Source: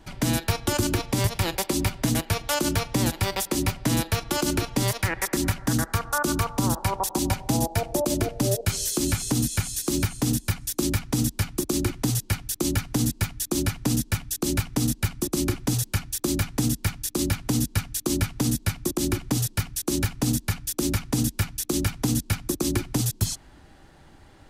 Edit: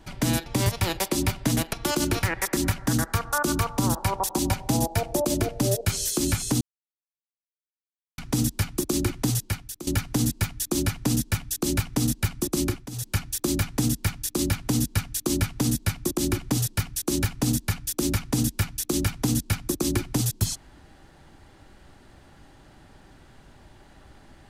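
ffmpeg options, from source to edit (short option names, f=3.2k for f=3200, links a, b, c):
-filter_complex "[0:a]asplit=8[a][b][c][d][e][f][g][h];[a]atrim=end=0.462[i];[b]atrim=start=1.038:end=2.312[j];[c]atrim=start=4.188:end=4.692[k];[d]atrim=start=5.028:end=9.41,asetpts=PTS-STARTPTS,afade=t=out:st=4.378:d=0.004:c=hsin[l];[e]atrim=start=9.41:end=10.98,asetpts=PTS-STARTPTS,volume=0[m];[f]atrim=start=10.98:end=12.67,asetpts=PTS-STARTPTS,afade=t=in:d=0.004:c=hsin,afade=t=out:st=1.17:d=0.52:silence=0.158489[n];[g]atrim=start=12.67:end=15.7,asetpts=PTS-STARTPTS,afade=t=in:d=0.004:c=hsin:silence=0.158489,afade=t=out:st=2.78:d=0.25:silence=0.16788[o];[h]atrim=start=15.7,asetpts=PTS-STARTPTS,afade=t=in:d=0.25:silence=0.16788[p];[i][j]acrossfade=d=0.004:c1=hsin:c2=hsin[q];[q][k]acrossfade=d=0.004:c1=hsin:c2=hsin[r];[l][m][n][o][p]concat=n=5:v=0:a=1[s];[r][s]acrossfade=d=0.004:c1=hsin:c2=hsin"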